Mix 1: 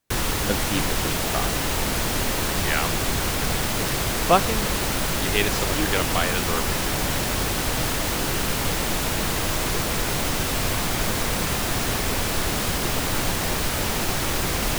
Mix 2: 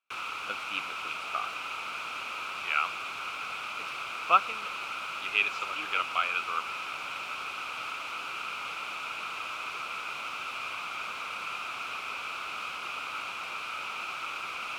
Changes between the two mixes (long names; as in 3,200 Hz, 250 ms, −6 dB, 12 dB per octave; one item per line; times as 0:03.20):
speech +4.0 dB
master: add pair of resonant band-passes 1,800 Hz, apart 0.9 octaves